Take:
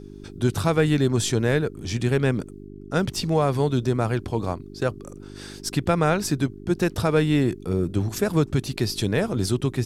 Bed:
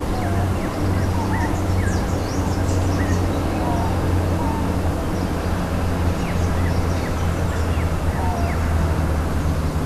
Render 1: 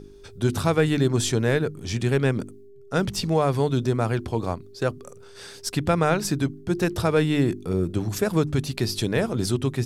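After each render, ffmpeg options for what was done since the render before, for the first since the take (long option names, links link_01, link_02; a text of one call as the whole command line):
ffmpeg -i in.wav -af "bandreject=frequency=50:width_type=h:width=4,bandreject=frequency=100:width_type=h:width=4,bandreject=frequency=150:width_type=h:width=4,bandreject=frequency=200:width_type=h:width=4,bandreject=frequency=250:width_type=h:width=4,bandreject=frequency=300:width_type=h:width=4,bandreject=frequency=350:width_type=h:width=4" out.wav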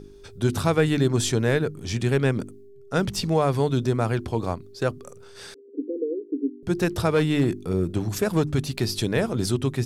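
ffmpeg -i in.wav -filter_complex "[0:a]asettb=1/sr,asplit=3[link_01][link_02][link_03];[link_01]atrim=end=5.544[link_04];[link_02]atrim=start=5.54:end=6.63,asetpts=PTS-STARTPTS,afade=type=in:duration=0.004:curve=qsin,afade=type=out:start_time=1.086:duration=0.004:curve=qsin,asuperpass=centerf=350:order=20:qfactor=1.4[link_05];[link_03]atrim=start=6.626[link_06];[link_04][link_05]acrossfade=duration=0.004:curve1=hsin:curve2=qsin[link_07];[link_07][link_06]acrossfade=duration=0.004:curve1=qsin:curve2=hsin,asettb=1/sr,asplit=3[link_08][link_09][link_10];[link_08]atrim=end=7.144[link_11];[link_09]atrim=start=7.14:end=8.97,asetpts=PTS-STARTPTS,afade=type=in:duration=0.004:curve=qsin,afade=type=out:start_time=1.826:duration=0.004:curve=qsin,asoftclip=type=hard:threshold=-14dB[link_12];[link_10]atrim=start=8.966[link_13];[link_11][link_12]acrossfade=duration=0.004:curve1=hsin:curve2=qsin[link_14];[link_14][link_13]acrossfade=duration=0.004:curve1=qsin:curve2=hsin" out.wav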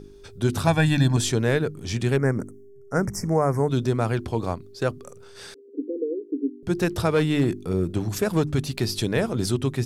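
ffmpeg -i in.wav -filter_complex "[0:a]asettb=1/sr,asplit=3[link_01][link_02][link_03];[link_01]atrim=end=0.674[link_04];[link_02]atrim=start=0.67:end=1.17,asetpts=PTS-STARTPTS,afade=type=in:duration=0.004:curve=qsin,afade=type=out:start_time=0.496:duration=0.004:curve=qsin,aecho=1:1:1.2:0.93,atrim=end_sample=22050[link_05];[link_03]atrim=start=1.166[link_06];[link_04][link_05]acrossfade=duration=0.004:curve1=hsin:curve2=qsin[link_07];[link_07][link_06]acrossfade=duration=0.004:curve1=qsin:curve2=hsin,asplit=3[link_08][link_09][link_10];[link_08]afade=type=out:start_time=2.16:duration=0.02[link_11];[link_09]asuperstop=centerf=3400:order=12:qfactor=1.1,afade=type=in:start_time=2.16:duration=0.02,afade=type=out:start_time=3.68:duration=0.02[link_12];[link_10]afade=type=in:start_time=3.68:duration=0.02[link_13];[link_11][link_12][link_13]amix=inputs=3:normalize=0" out.wav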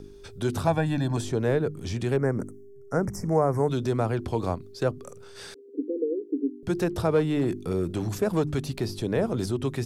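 ffmpeg -i in.wav -filter_complex "[0:a]acrossover=split=340|1100[link_01][link_02][link_03];[link_01]alimiter=limit=-23dB:level=0:latency=1:release=65[link_04];[link_03]acompressor=threshold=-39dB:ratio=6[link_05];[link_04][link_02][link_05]amix=inputs=3:normalize=0" out.wav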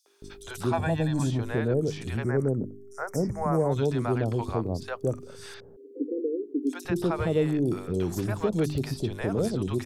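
ffmpeg -i in.wav -filter_complex "[0:a]acrossover=split=640|4700[link_01][link_02][link_03];[link_02]adelay=60[link_04];[link_01]adelay=220[link_05];[link_05][link_04][link_03]amix=inputs=3:normalize=0" out.wav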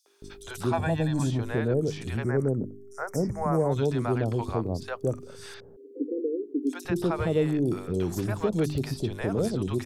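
ffmpeg -i in.wav -af anull out.wav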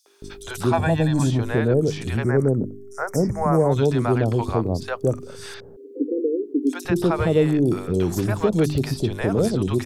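ffmpeg -i in.wav -af "volume=6.5dB" out.wav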